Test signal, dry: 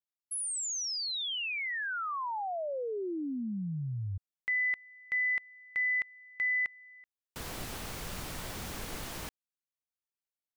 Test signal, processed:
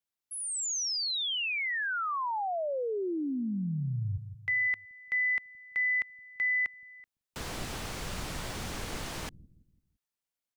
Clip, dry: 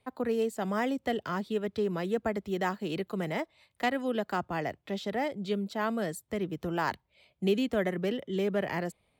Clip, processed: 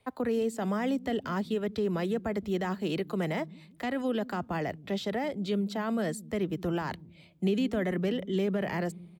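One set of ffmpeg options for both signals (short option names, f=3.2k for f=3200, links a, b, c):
-filter_complex "[0:a]acrossover=split=9700[a][b];[b]acompressor=threshold=-57dB:ratio=4:attack=1:release=60[c];[a][c]amix=inputs=2:normalize=0,acrossover=split=250[d][e];[d]aecho=1:1:169|338|507|676:0.299|0.122|0.0502|0.0206[f];[e]alimiter=level_in=4dB:limit=-24dB:level=0:latency=1:release=16,volume=-4dB[g];[f][g]amix=inputs=2:normalize=0,volume=3dB"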